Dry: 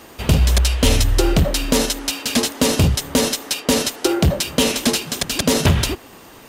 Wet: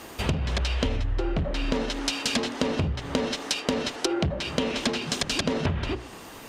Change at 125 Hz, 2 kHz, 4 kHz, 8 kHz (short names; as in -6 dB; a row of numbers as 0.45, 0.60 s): -10.5, -6.5, -8.5, -14.0 dB